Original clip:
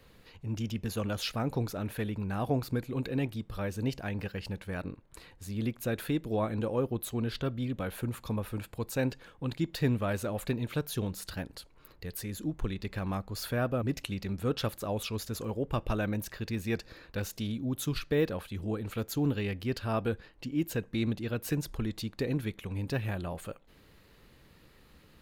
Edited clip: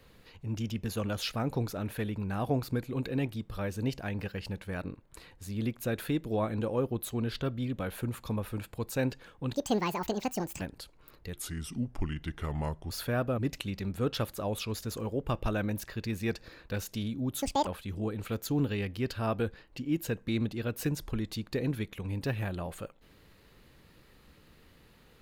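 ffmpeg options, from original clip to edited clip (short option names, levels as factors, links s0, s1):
-filter_complex "[0:a]asplit=7[s0][s1][s2][s3][s4][s5][s6];[s0]atrim=end=9.544[s7];[s1]atrim=start=9.54:end=11.38,asetpts=PTS-STARTPTS,asetrate=75852,aresample=44100[s8];[s2]atrim=start=11.376:end=12.104[s9];[s3]atrim=start=12.1:end=13.34,asetpts=PTS-STARTPTS,asetrate=34839,aresample=44100,atrim=end_sample=69220,asetpts=PTS-STARTPTS[s10];[s4]atrim=start=13.336:end=17.864[s11];[s5]atrim=start=17.86:end=18.33,asetpts=PTS-STARTPTS,asetrate=83349,aresample=44100[s12];[s6]atrim=start=18.326[s13];[s7][s8]acrossfade=d=0.004:c1=hsin:c2=hsin[s14];[s14][s9]acrossfade=d=0.004:c1=hsin:c2=hsin[s15];[s15][s10]acrossfade=d=0.004:c1=hsin:c2=hsin[s16];[s16][s11]acrossfade=d=0.004:c1=hsin:c2=hsin[s17];[s17][s12]acrossfade=d=0.004:c1=hsin:c2=hsin[s18];[s18][s13]acrossfade=d=0.004:c1=hsin:c2=hsin"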